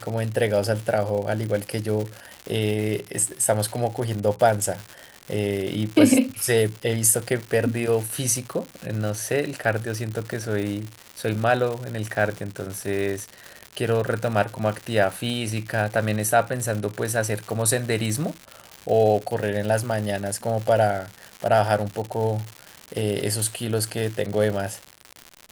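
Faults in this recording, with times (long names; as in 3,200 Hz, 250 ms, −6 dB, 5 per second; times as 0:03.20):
surface crackle 200 per second −28 dBFS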